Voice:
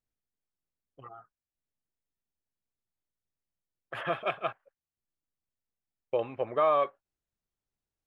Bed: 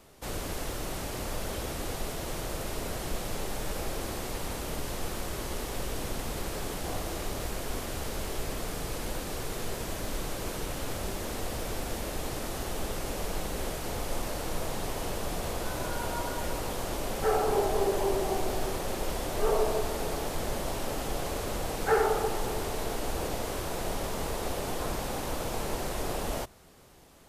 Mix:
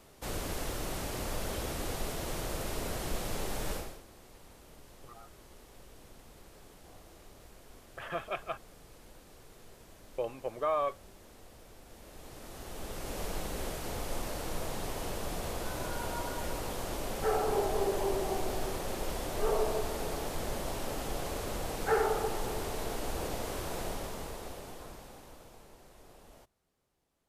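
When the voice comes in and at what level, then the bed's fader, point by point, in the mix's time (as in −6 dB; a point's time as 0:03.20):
4.05 s, −5.5 dB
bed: 0:03.74 −1.5 dB
0:04.04 −20 dB
0:11.82 −20 dB
0:13.21 −3.5 dB
0:23.80 −3.5 dB
0:25.75 −23.5 dB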